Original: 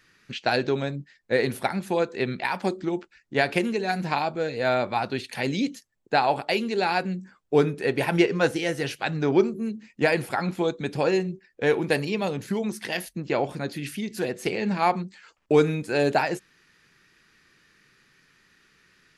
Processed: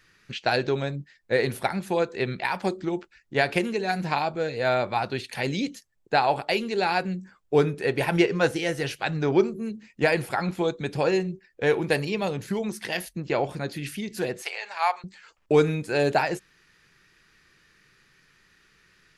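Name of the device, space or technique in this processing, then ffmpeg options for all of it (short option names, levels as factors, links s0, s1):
low shelf boost with a cut just above: -filter_complex "[0:a]asettb=1/sr,asplit=3[s0][s1][s2];[s0]atrim=end=14.424[s3];[s1]atrim=start=14.42:end=15.04,asetpts=PTS-STARTPTS,afade=t=in:d=0.004:c=qsin,afade=t=out:st=0.616:d=0.004:c=qsin,highpass=f=730:w=0.5412,highpass=f=730:w=1.3066[s4];[s2]atrim=start=15.036[s5];[s3][s4]acrossfade=d=0.004:c1=hsin:c2=qsin[s6];[s6][s5]acrossfade=d=0.004:c1=qsin:c2=hsin,lowshelf=f=62:g=8,equalizer=f=250:t=o:w=0.53:g=-4.5"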